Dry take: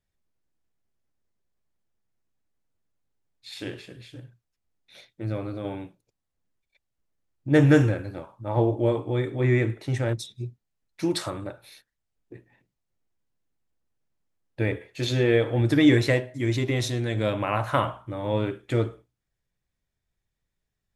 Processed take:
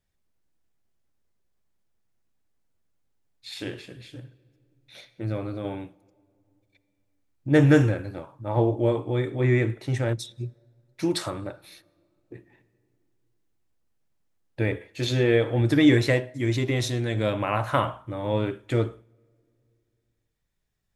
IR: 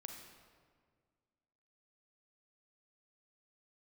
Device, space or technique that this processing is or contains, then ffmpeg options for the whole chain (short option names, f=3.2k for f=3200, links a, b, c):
ducked reverb: -filter_complex "[0:a]asplit=3[a][b][c];[1:a]atrim=start_sample=2205[d];[b][d]afir=irnorm=-1:irlink=0[e];[c]apad=whole_len=923897[f];[e][f]sidechaincompress=threshold=-39dB:ratio=16:attack=12:release=1440,volume=-2.5dB[g];[a][g]amix=inputs=2:normalize=0"